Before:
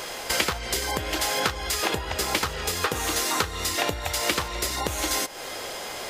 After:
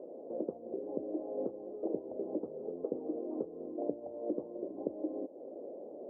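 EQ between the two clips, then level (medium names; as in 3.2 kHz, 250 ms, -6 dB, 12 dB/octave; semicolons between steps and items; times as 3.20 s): ladder high-pass 230 Hz, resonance 40%; elliptic low-pass 600 Hz, stop band 70 dB; +1.5 dB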